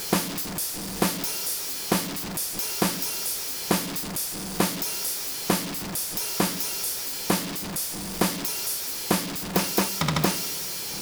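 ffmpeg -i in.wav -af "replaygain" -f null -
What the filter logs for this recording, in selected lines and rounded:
track_gain = +6.6 dB
track_peak = 0.301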